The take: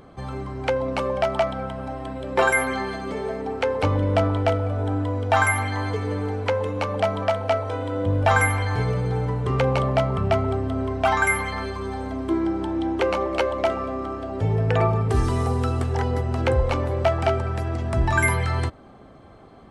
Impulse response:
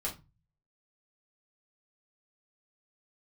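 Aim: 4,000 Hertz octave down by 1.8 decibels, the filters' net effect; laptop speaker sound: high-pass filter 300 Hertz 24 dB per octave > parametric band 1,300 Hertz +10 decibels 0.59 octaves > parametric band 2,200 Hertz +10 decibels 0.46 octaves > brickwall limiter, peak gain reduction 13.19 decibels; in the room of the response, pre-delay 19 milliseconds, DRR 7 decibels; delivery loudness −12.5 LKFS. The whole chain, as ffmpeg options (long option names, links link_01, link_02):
-filter_complex "[0:a]equalizer=frequency=4000:width_type=o:gain=-6,asplit=2[link_01][link_02];[1:a]atrim=start_sample=2205,adelay=19[link_03];[link_02][link_03]afir=irnorm=-1:irlink=0,volume=-9.5dB[link_04];[link_01][link_04]amix=inputs=2:normalize=0,highpass=frequency=300:width=0.5412,highpass=frequency=300:width=1.3066,equalizer=frequency=1300:width_type=o:width=0.59:gain=10,equalizer=frequency=2200:width_type=o:width=0.46:gain=10,volume=11.5dB,alimiter=limit=-2.5dB:level=0:latency=1"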